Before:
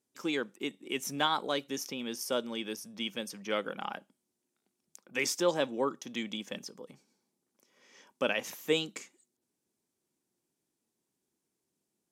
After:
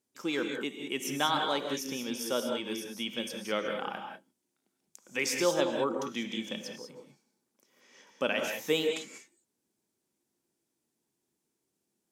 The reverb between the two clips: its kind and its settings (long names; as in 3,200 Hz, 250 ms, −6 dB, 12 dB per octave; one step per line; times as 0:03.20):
reverb whose tail is shaped and stops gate 220 ms rising, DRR 3.5 dB